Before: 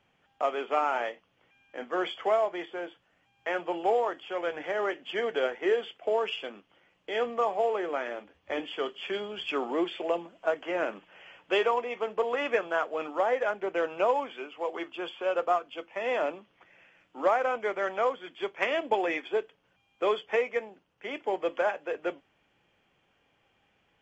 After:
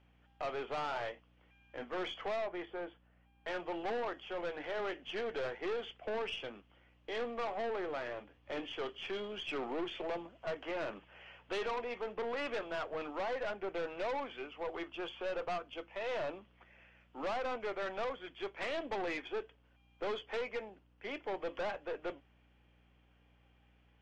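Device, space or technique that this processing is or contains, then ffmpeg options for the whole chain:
valve amplifier with mains hum: -filter_complex "[0:a]asettb=1/sr,asplit=3[s0][s1][s2];[s0]atrim=end=2.414[s3];[s1]atrim=start=2.41:end=3.48,asetpts=PTS-STARTPTS,afade=t=in:d=0.004:c=qsin,afade=t=out:st=1.066:d=0.004:c=qsin,aemphasis=mode=reproduction:type=75kf[s4];[s2]atrim=start=3.476[s5];[s3][s4]acrossfade=d=0.004:c1=hsin:c2=qsin[s6];[s6][s5]acrossfade=d=0.004:c1=qsin:c2=hsin,aeval=exprs='(tanh(35.5*val(0)+0.3)-tanh(0.3))/35.5':c=same,aeval=exprs='val(0)+0.000631*(sin(2*PI*60*n/s)+sin(2*PI*2*60*n/s)/2+sin(2*PI*3*60*n/s)/3+sin(2*PI*4*60*n/s)/4+sin(2*PI*5*60*n/s)/5)':c=same,lowpass=5200,volume=0.708"

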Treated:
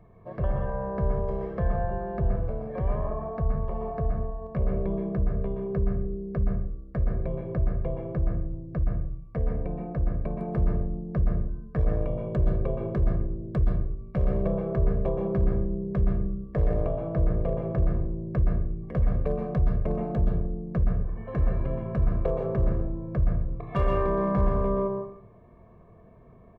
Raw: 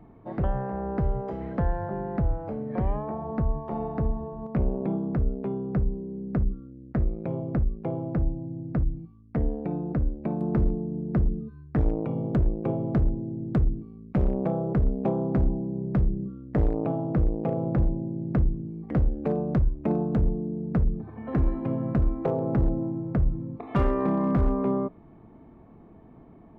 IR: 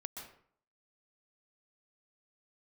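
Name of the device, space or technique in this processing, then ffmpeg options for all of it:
microphone above a desk: -filter_complex "[0:a]aecho=1:1:1.8:0.75[s0];[1:a]atrim=start_sample=2205[s1];[s0][s1]afir=irnorm=-1:irlink=0"

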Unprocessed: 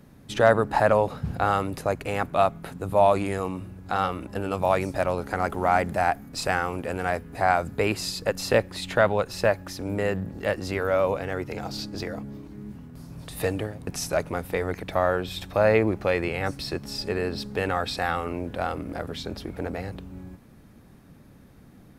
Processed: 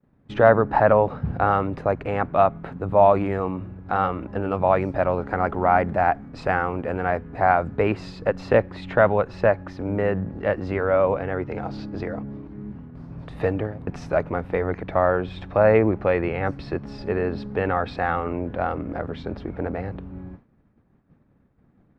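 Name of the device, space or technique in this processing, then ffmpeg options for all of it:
hearing-loss simulation: -af "lowpass=1800,agate=range=0.0224:threshold=0.00891:ratio=3:detection=peak,volume=1.5"

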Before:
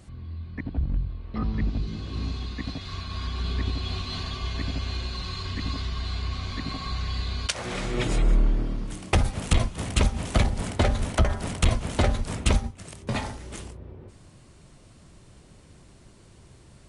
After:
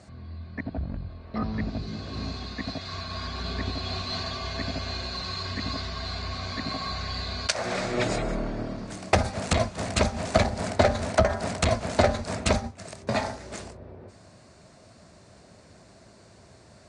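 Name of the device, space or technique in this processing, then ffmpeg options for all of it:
car door speaker: -af "highpass=100,equalizer=f=140:t=q:w=4:g=-7,equalizer=f=320:t=q:w=4:g=-4,equalizer=f=650:t=q:w=4:g=9,equalizer=f=1600:t=q:w=4:g=3,equalizer=f=3100:t=q:w=4:g=-7,equalizer=f=4500:t=q:w=4:g=4,lowpass=f=8300:w=0.5412,lowpass=f=8300:w=1.3066,volume=1.26"

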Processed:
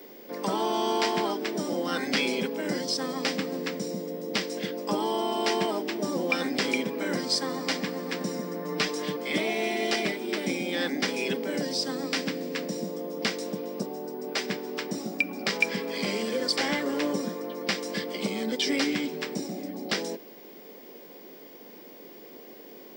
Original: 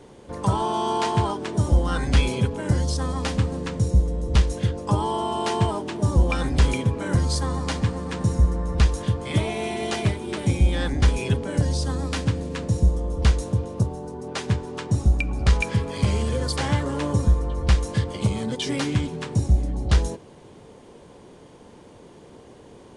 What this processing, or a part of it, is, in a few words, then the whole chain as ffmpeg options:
old television with a line whistle: -filter_complex "[0:a]highpass=f=170:w=0.5412,highpass=f=170:w=1.3066,bandreject=f=6600:w=9.7,asettb=1/sr,asplit=3[s0][s1][s2];[s0]atrim=end=8.644[s3];[s1]atrim=start=8.64:end=9.17,asetpts=PTS-STARTPTS,afade=t=in:d=0.004:c=qsin,afade=t=out:st=0.526:d=0.004:c=qsin,aecho=1:1:6.7:0.71,atrim=end_sample=23373[s4];[s2]atrim=start=9.166[s5];[s3][s4]acrossfade=d=0.004:c1=hsin:c2=qsin[s6];[s6][s5]acrossfade=d=0.004:c1=qsin:c2=hsin,highpass=f=210:w=0.5412,highpass=f=210:w=1.3066,equalizer=f=950:t=q:w=4:g=-7,equalizer=f=1300:t=q:w=4:g=-3,equalizer=f=2100:t=q:w=4:g=6,equalizer=f=5100:t=q:w=4:g=7,lowpass=f=7900:w=0.5412,lowpass=f=7900:w=1.3066,aeval=exprs='val(0)+0.00355*sin(2*PI*15625*n/s)':c=same"

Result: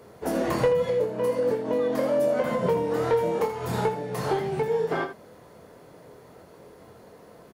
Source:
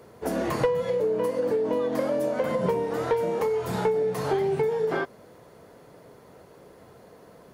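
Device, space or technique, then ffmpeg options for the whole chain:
slapback doubling: -filter_complex "[0:a]asplit=3[s0][s1][s2];[s1]adelay=24,volume=0.473[s3];[s2]adelay=81,volume=0.299[s4];[s0][s3][s4]amix=inputs=3:normalize=0"

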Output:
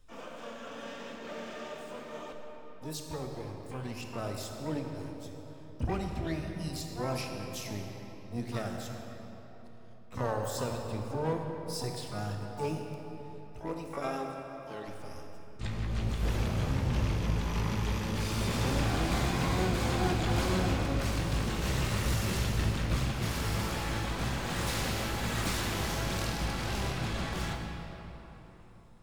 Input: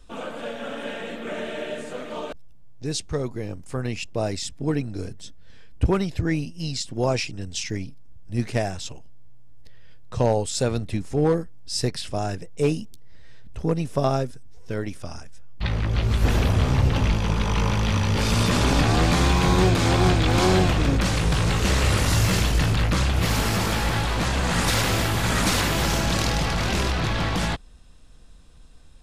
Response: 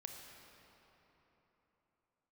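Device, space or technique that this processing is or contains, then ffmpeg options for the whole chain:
shimmer-style reverb: -filter_complex "[0:a]asplit=3[s0][s1][s2];[s0]afade=t=out:st=13.6:d=0.02[s3];[s1]highpass=260,afade=t=in:st=13.6:d=0.02,afade=t=out:st=14.87:d=0.02[s4];[s2]afade=t=in:st=14.87:d=0.02[s5];[s3][s4][s5]amix=inputs=3:normalize=0,asplit=2[s6][s7];[s7]asetrate=88200,aresample=44100,atempo=0.5,volume=0.501[s8];[s6][s8]amix=inputs=2:normalize=0[s9];[1:a]atrim=start_sample=2205[s10];[s9][s10]afir=irnorm=-1:irlink=0,volume=0.422"

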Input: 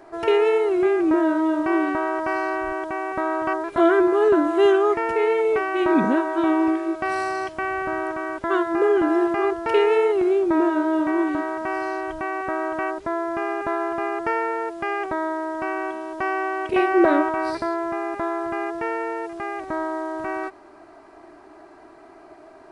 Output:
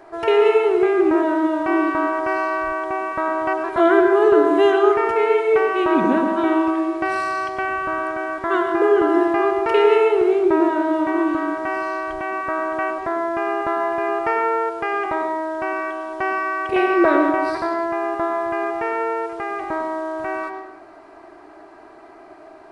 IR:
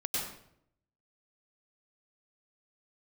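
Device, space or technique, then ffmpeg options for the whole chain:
filtered reverb send: -filter_complex "[0:a]asplit=2[s0][s1];[s1]highpass=f=220:w=0.5412,highpass=f=220:w=1.3066,lowpass=4600[s2];[1:a]atrim=start_sample=2205[s3];[s2][s3]afir=irnorm=-1:irlink=0,volume=0.447[s4];[s0][s4]amix=inputs=2:normalize=0"

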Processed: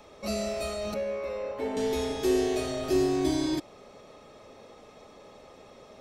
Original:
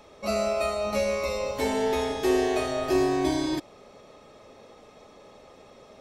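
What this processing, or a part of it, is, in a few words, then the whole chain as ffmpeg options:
one-band saturation: -filter_complex "[0:a]acrossover=split=510|3000[s0][s1][s2];[s1]asoftclip=type=tanh:threshold=0.0106[s3];[s0][s3][s2]amix=inputs=3:normalize=0,asettb=1/sr,asplit=3[s4][s5][s6];[s4]atrim=end=0.944[s7];[s5]atrim=start=0.94:end=1.77,asetpts=PTS-STARTPTS,afade=t=in:d=0.004:c=qsin,afade=t=out:st=0.826:d=0.004:c=qsin,acrossover=split=280 2400:gain=0.251 1 0.0891[s8][s9][s10];[s8][s9][s10]amix=inputs=3:normalize=0[s11];[s6]atrim=start=1.766[s12];[s7][s11]acrossfade=d=0.004:c1=hsin:c2=qsin[s13];[s13][s12]acrossfade=d=0.004:c1=qsin:c2=hsin"

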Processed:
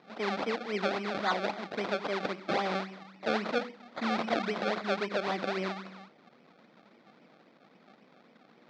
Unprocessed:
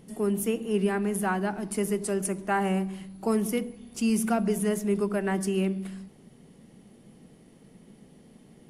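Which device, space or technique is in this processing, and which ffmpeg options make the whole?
circuit-bent sampling toy: -af "highshelf=f=5900:g=5,acrusher=samples=31:mix=1:aa=0.000001:lfo=1:lforange=31:lforate=3.7,highpass=410,equalizer=f=410:t=q:w=4:g=-6,equalizer=f=920:t=q:w=4:g=-5,equalizer=f=1700:t=q:w=4:g=-4,equalizer=f=2900:t=q:w=4:g=-8,lowpass=f=4100:w=0.5412,lowpass=f=4100:w=1.3066,volume=1.26"

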